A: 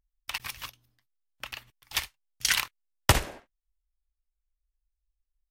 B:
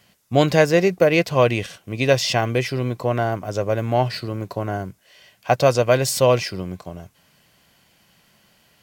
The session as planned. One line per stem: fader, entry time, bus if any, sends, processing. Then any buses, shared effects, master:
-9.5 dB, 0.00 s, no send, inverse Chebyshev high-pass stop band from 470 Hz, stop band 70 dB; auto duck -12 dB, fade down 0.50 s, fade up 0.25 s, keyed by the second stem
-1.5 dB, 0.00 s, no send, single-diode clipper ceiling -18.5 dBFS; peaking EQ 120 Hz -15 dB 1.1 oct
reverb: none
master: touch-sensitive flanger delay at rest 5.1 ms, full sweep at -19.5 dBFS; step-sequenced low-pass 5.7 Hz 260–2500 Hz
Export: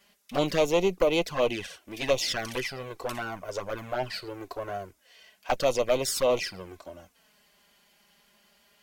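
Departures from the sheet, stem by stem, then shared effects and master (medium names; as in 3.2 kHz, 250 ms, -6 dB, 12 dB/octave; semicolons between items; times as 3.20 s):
stem A -9.5 dB -> -3.0 dB; master: missing step-sequenced low-pass 5.7 Hz 260–2500 Hz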